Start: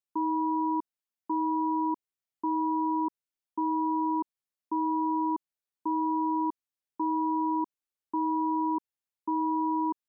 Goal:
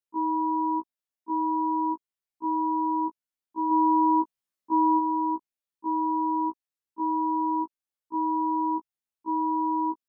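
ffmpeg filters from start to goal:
-filter_complex "[0:a]asettb=1/sr,asplit=3[s0][s1][s2];[s0]atrim=end=3.714[s3];[s1]atrim=start=3.71:end=4.99,asetpts=PTS-STARTPTS,afade=t=in:d=0.004:c=qsin,afade=t=out:st=1.276:d=0.004:c=qsin,acontrast=27[s4];[s2]atrim=start=4.986[s5];[s3][s4]acrossfade=d=0.004:c1=hsin:c2=qsin[s6];[s6][s5]acrossfade=d=0.004:c1=qsin:c2=hsin,afftfilt=real='re*1.73*eq(mod(b,3),0)':imag='im*1.73*eq(mod(b,3),0)':win_size=2048:overlap=0.75"

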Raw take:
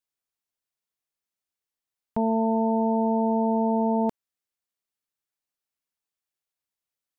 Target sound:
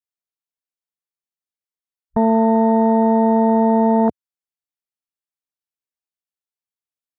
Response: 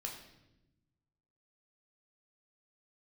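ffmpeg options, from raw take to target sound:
-af "afwtdn=0.0282,volume=2.66"

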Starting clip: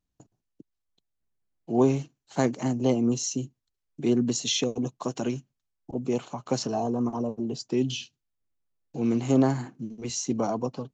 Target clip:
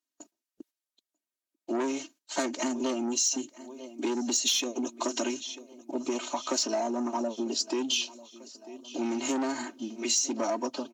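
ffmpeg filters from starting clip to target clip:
-filter_complex "[0:a]aecho=1:1:3.2:1,asplit=2[s0][s1];[s1]aecho=0:1:944|1888|2832|3776:0.0668|0.0361|0.0195|0.0105[s2];[s0][s2]amix=inputs=2:normalize=0,asoftclip=type=tanh:threshold=0.126,highpass=f=230:w=0.5412,highpass=f=230:w=1.3066,highshelf=f=2500:g=7,acompressor=threshold=0.0447:ratio=12,lowshelf=f=390:g=-6.5,agate=range=0.282:threshold=0.00112:ratio=16:detection=peak,volume=1.58" -ar 44100 -c:a libvorbis -b:a 96k

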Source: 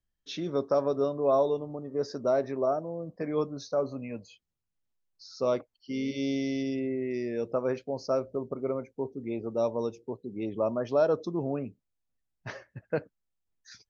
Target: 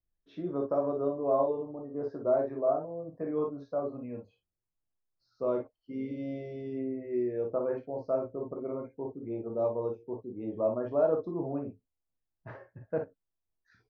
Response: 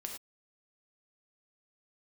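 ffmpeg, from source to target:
-filter_complex "[0:a]lowpass=1200[s0];[1:a]atrim=start_sample=2205,asetrate=79380,aresample=44100[s1];[s0][s1]afir=irnorm=-1:irlink=0,volume=1.68"

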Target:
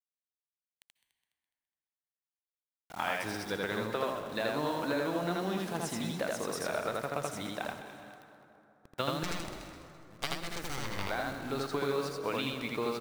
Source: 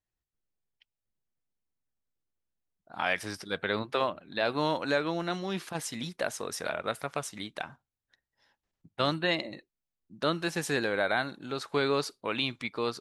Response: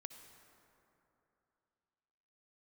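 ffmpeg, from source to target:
-filter_complex "[0:a]acompressor=threshold=0.0355:ratio=16,acrusher=bits=7:mix=0:aa=0.000001,asettb=1/sr,asplit=3[s0][s1][s2];[s0]atrim=end=9.234[s3];[s1]atrim=start=9.23:end=11.07,asetpts=PTS-STARTPTS,afade=t=in:d=0.004:c=qsin,afade=t=out:st=1.836:d=0.004:c=qsin,aeval=exprs='0.1*(cos(1*acos(clip(val(0)/0.1,-1,1)))-cos(1*PI/2))+0.0447*(cos(3*acos(clip(val(0)/0.1,-1,1)))-cos(3*PI/2))+0.0282*(cos(4*acos(clip(val(0)/0.1,-1,1)))-cos(4*PI/2))':c=same[s4];[s2]atrim=start=11.066[s5];[s3][s4]acrossfade=d=0.004:c1=hsin:c2=qsin[s6];[s6][s5]acrossfade=d=0.004:c1=qsin:c2=hsin,asplit=5[s7][s8][s9][s10][s11];[s8]adelay=208,afreqshift=37,volume=0.2[s12];[s9]adelay=416,afreqshift=74,volume=0.0776[s13];[s10]adelay=624,afreqshift=111,volume=0.0302[s14];[s11]adelay=832,afreqshift=148,volume=0.0119[s15];[s7][s12][s13][s14][s15]amix=inputs=5:normalize=0,asplit=2[s16][s17];[1:a]atrim=start_sample=2205,adelay=81[s18];[s17][s18]afir=irnorm=-1:irlink=0,volume=1.68[s19];[s16][s19]amix=inputs=2:normalize=0,adynamicequalizer=threshold=0.00562:dfrequency=1600:dqfactor=0.7:tfrequency=1600:tqfactor=0.7:attack=5:release=100:ratio=0.375:range=2.5:mode=cutabove:tftype=highshelf"

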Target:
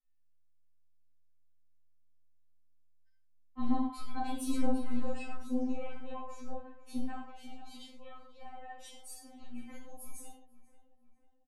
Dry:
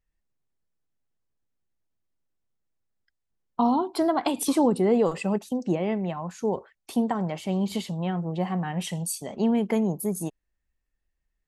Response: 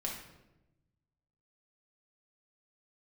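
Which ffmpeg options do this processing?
-filter_complex "[0:a]asplit=3[s0][s1][s2];[s0]afade=t=out:st=7.16:d=0.02[s3];[s1]flanger=delay=1.2:depth=2.1:regen=37:speed=1.3:shape=sinusoidal,afade=t=in:st=7.16:d=0.02,afade=t=out:st=9.89:d=0.02[s4];[s2]afade=t=in:st=9.89:d=0.02[s5];[s3][s4][s5]amix=inputs=3:normalize=0,aeval=exprs='(tanh(4.47*val(0)+0.35)-tanh(0.35))/4.47':c=same,asplit=2[s6][s7];[s7]adelay=492,lowpass=f=2700:p=1,volume=0.141,asplit=2[s8][s9];[s9]adelay=492,lowpass=f=2700:p=1,volume=0.53,asplit=2[s10][s11];[s11]adelay=492,lowpass=f=2700:p=1,volume=0.53,asplit=2[s12][s13];[s13]adelay=492,lowpass=f=2700:p=1,volume=0.53,asplit=2[s14][s15];[s15]adelay=492,lowpass=f=2700:p=1,volume=0.53[s16];[s6][s8][s10][s12][s14][s16]amix=inputs=6:normalize=0[s17];[1:a]atrim=start_sample=2205,afade=t=out:st=0.2:d=0.01,atrim=end_sample=9261[s18];[s17][s18]afir=irnorm=-1:irlink=0,afftfilt=real='re*3.46*eq(mod(b,12),0)':imag='im*3.46*eq(mod(b,12),0)':win_size=2048:overlap=0.75,volume=0.355"

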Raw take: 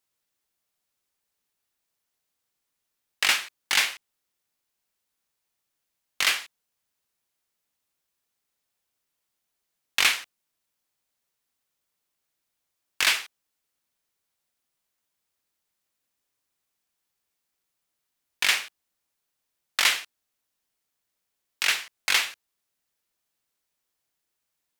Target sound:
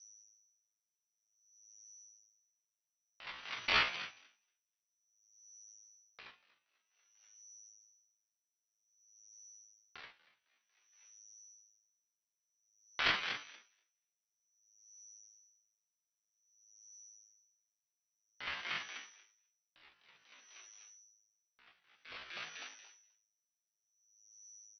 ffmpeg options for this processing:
-filter_complex "[0:a]flanger=delay=5.7:depth=6.8:regen=2:speed=1.1:shape=sinusoidal,aeval=exprs='val(0)+0.00112*(sin(2*PI*60*n/s)+sin(2*PI*2*60*n/s)/2+sin(2*PI*3*60*n/s)/3+sin(2*PI*4*60*n/s)/4+sin(2*PI*5*60*n/s)/5)':c=same,lowpass=f=2900:t=q:w=0.5098,lowpass=f=2900:t=q:w=0.6013,lowpass=f=2900:t=q:w=0.9,lowpass=f=2900:t=q:w=2.563,afreqshift=-3400,asplit=2[s0][s1];[s1]acompressor=threshold=0.00631:ratio=8,volume=0.891[s2];[s0][s2]amix=inputs=2:normalize=0,asplit=2[s3][s4];[s4]adelay=28,volume=0.224[s5];[s3][s5]amix=inputs=2:normalize=0,bandreject=f=99.44:t=h:w=4,bandreject=f=198.88:t=h:w=4,bandreject=f=298.32:t=h:w=4,bandreject=f=397.76:t=h:w=4,bandreject=f=497.2:t=h:w=4,bandreject=f=596.64:t=h:w=4,bandreject=f=696.08:t=h:w=4,bandreject=f=795.52:t=h:w=4,bandreject=f=894.96:t=h:w=4,bandreject=f=994.4:t=h:w=4,bandreject=f=1093.84:t=h:w=4,bandreject=f=1193.28:t=h:w=4,bandreject=f=1292.72:t=h:w=4,bandreject=f=1392.16:t=h:w=4,bandreject=f=1491.6:t=h:w=4,bandreject=f=1591.04:t=h:w=4,bandreject=f=1690.48:t=h:w=4,bandreject=f=1789.92:t=h:w=4,bandreject=f=1889.36:t=h:w=4,bandreject=f=1988.8:t=h:w=4,bandreject=f=2088.24:t=h:w=4,bandreject=f=2187.68:t=h:w=4,bandreject=f=2287.12:t=h:w=4,bandreject=f=2386.56:t=h:w=4,bandreject=f=2486:t=h:w=4,bandreject=f=2585.44:t=h:w=4,bandreject=f=2684.88:t=h:w=4,bandreject=f=2784.32:t=h:w=4,bandreject=f=2883.76:t=h:w=4,bandreject=f=2983.2:t=h:w=4,asplit=5[s6][s7][s8][s9][s10];[s7]adelay=240,afreqshift=58,volume=0.355[s11];[s8]adelay=480,afreqshift=116,volume=0.12[s12];[s9]adelay=720,afreqshift=174,volume=0.0412[s13];[s10]adelay=960,afreqshift=232,volume=0.014[s14];[s6][s11][s12][s13][s14]amix=inputs=5:normalize=0,asetrate=78577,aresample=44100,atempo=0.561231,aeval=exprs='val(0)*pow(10,-35*(0.5-0.5*cos(2*PI*0.53*n/s))/20)':c=same,volume=0.75"

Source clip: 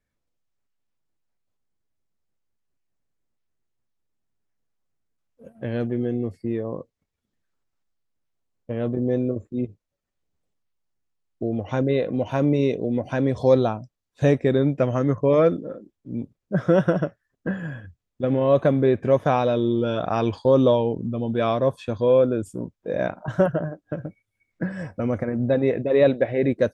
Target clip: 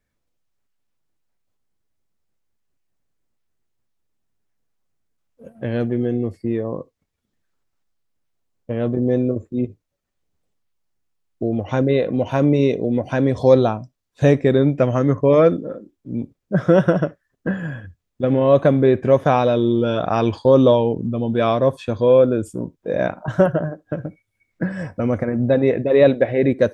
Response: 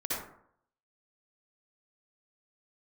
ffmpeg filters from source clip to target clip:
-filter_complex "[0:a]asplit=2[s0][s1];[1:a]atrim=start_sample=2205,atrim=end_sample=3528[s2];[s1][s2]afir=irnorm=-1:irlink=0,volume=0.0422[s3];[s0][s3]amix=inputs=2:normalize=0,volume=1.58"

